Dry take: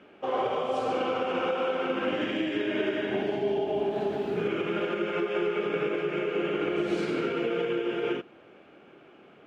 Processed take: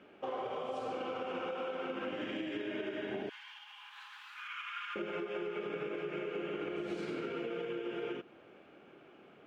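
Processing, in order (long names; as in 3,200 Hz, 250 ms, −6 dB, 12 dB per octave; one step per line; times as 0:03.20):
0:03.29–0:04.96: Butterworth high-pass 1,000 Hz 72 dB per octave
downward compressor, threshold −31 dBFS, peak gain reduction 8 dB
level −4.5 dB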